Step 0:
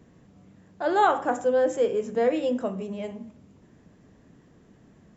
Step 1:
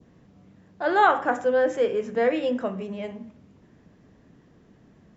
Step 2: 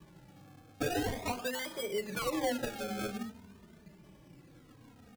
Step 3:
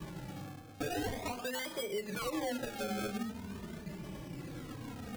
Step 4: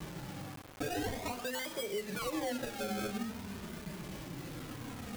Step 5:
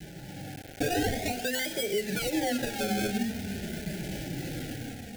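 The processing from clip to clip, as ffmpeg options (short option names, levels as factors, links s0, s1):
-af "lowpass=f=6300:w=0.5412,lowpass=f=6300:w=1.3066,adynamicequalizer=threshold=0.00631:dfrequency=1800:dqfactor=1.1:tfrequency=1800:tqfactor=1.1:attack=5:release=100:ratio=0.375:range=3.5:mode=boostabove:tftype=bell"
-filter_complex "[0:a]acompressor=threshold=0.0398:ratio=12,acrusher=samples=31:mix=1:aa=0.000001:lfo=1:lforange=31:lforate=0.42,asplit=2[s0][s1];[s1]adelay=3,afreqshift=-0.49[s2];[s0][s2]amix=inputs=2:normalize=1,volume=1.19"
-af "areverse,acompressor=mode=upward:threshold=0.01:ratio=2.5,areverse,alimiter=level_in=2.51:limit=0.0631:level=0:latency=1:release=309,volume=0.398,volume=1.78"
-af "acrusher=bits=7:mix=0:aa=0.000001"
-af "asuperstop=centerf=1100:order=12:qfactor=1.9,adynamicequalizer=threshold=0.002:dfrequency=540:dqfactor=3.6:tfrequency=540:tqfactor=3.6:attack=5:release=100:ratio=0.375:range=2:mode=cutabove:tftype=bell,dynaudnorm=f=200:g=5:m=2.66"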